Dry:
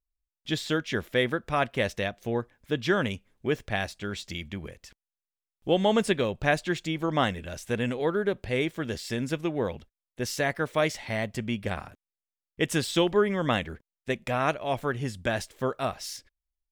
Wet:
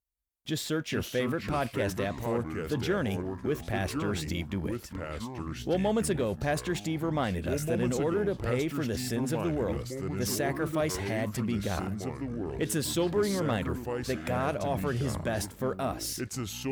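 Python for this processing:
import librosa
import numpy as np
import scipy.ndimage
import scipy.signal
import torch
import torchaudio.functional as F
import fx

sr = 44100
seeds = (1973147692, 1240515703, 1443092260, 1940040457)

p1 = fx.over_compress(x, sr, threshold_db=-35.0, ratio=-1.0)
p2 = x + F.gain(torch.from_numpy(p1), -1.5).numpy()
p3 = fx.peak_eq(p2, sr, hz=3500.0, db=-7.5, octaves=2.6)
p4 = fx.echo_pitch(p3, sr, ms=312, semitones=-4, count=3, db_per_echo=-6.0)
p5 = fx.peak_eq(p4, sr, hz=13000.0, db=4.5, octaves=1.3)
p6 = fx.leveller(p5, sr, passes=1)
p7 = scipy.signal.sosfilt(scipy.signal.butter(2, 43.0, 'highpass', fs=sr, output='sos'), p6)
y = F.gain(torch.from_numpy(p7), -7.0).numpy()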